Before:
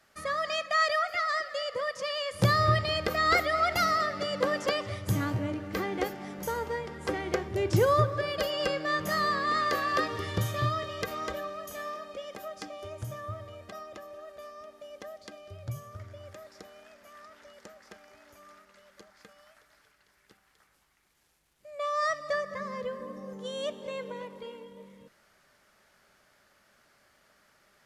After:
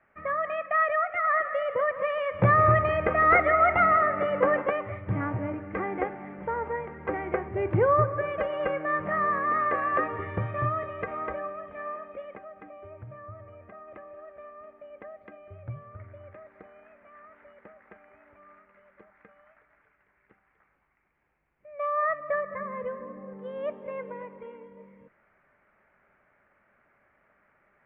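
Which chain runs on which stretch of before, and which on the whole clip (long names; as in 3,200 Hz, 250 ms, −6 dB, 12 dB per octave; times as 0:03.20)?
0:01.24–0:04.62: single-tap delay 155 ms −13 dB + leveller curve on the samples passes 1
0:12.38–0:13.88: downward compressor 1.5 to 1, threshold −45 dBFS + high-frequency loss of the air 180 metres
whole clip: elliptic low-pass filter 2,300 Hz, stop band 60 dB; dynamic equaliser 850 Hz, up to +4 dB, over −40 dBFS, Q 0.94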